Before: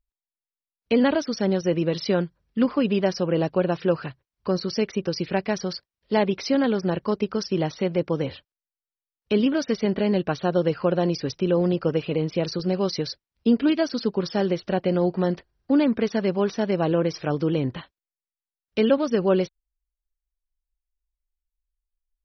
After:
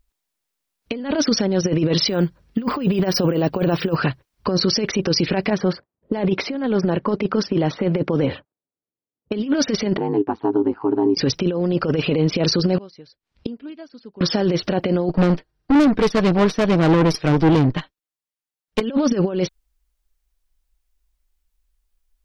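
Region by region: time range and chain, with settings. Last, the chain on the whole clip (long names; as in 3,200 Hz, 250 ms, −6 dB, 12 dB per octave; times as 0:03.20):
0:02.08–0:03.96: de-essing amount 75% + bad sample-rate conversion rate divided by 2×, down none, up hold
0:05.50–0:09.32: low-pass that shuts in the quiet parts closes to 430 Hz, open at −18 dBFS + high-pass filter 110 Hz + high-shelf EQ 3,700 Hz −8 dB
0:09.97–0:11.17: pair of resonant band-passes 550 Hz, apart 1.3 octaves + ring modulation 54 Hz
0:12.76–0:14.21: low-pass filter 5,100 Hz + gate with flip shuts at −27 dBFS, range −31 dB
0:15.09–0:18.81: noise gate −35 dBFS, range −8 dB + comb filter 6.5 ms, depth 45% + tube saturation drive 26 dB, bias 0.8
whole clip: parametric band 270 Hz +2.5 dB 0.63 octaves; compressor whose output falls as the input rises −25 dBFS, ratio −0.5; boost into a limiter +19 dB; level −8.5 dB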